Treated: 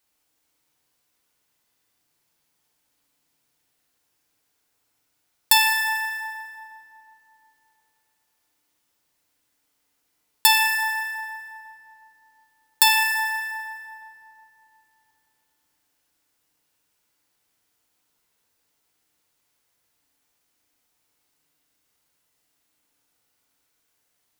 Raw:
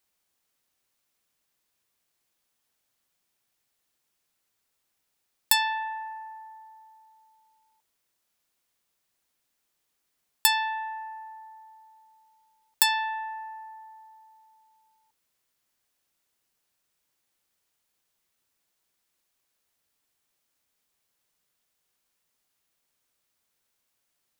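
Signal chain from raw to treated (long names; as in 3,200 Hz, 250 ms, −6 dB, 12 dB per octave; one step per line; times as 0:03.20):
0:05.67–0:06.21: high shelf with overshoot 3,400 Hz +9.5 dB, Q 1.5
feedback delay network reverb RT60 2.8 s, low-frequency decay 1.2×, high-frequency decay 0.55×, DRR −0.5 dB
level +2.5 dB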